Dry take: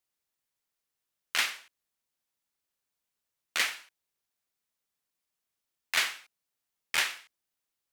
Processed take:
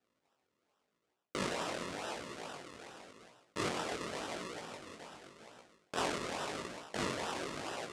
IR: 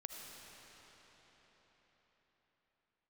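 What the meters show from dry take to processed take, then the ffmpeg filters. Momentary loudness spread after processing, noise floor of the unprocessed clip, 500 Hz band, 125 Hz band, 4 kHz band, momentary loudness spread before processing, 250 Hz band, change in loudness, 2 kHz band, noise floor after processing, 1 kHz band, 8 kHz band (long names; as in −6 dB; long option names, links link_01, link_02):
16 LU, below −85 dBFS, +13.5 dB, can't be measured, −8.5 dB, 18 LU, +18.5 dB, −10.0 dB, −9.5 dB, −83 dBFS, +3.0 dB, −7.0 dB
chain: -filter_complex "[0:a]asplit=2[link_01][link_02];[1:a]atrim=start_sample=2205,lowpass=3600[link_03];[link_02][link_03]afir=irnorm=-1:irlink=0,volume=0dB[link_04];[link_01][link_04]amix=inputs=2:normalize=0,acrusher=samples=39:mix=1:aa=0.000001:lfo=1:lforange=39:lforate=2.3,highpass=frequency=700:poles=1,flanger=delay=16.5:depth=7.5:speed=0.89,areverse,acompressor=threshold=-48dB:ratio=4,areverse,lowpass=frequency=9300:width=0.5412,lowpass=frequency=9300:width=1.3066,volume=13.5dB"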